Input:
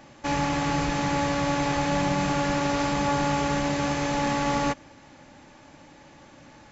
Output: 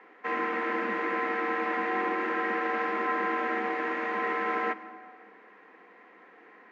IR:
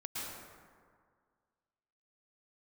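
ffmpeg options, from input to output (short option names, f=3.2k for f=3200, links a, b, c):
-filter_complex "[0:a]lowpass=f=1.7k:t=q:w=3,afreqshift=180,asplit=2[a][b];[1:a]atrim=start_sample=2205[c];[b][c]afir=irnorm=-1:irlink=0,volume=-14.5dB[d];[a][d]amix=inputs=2:normalize=0,volume=-7.5dB"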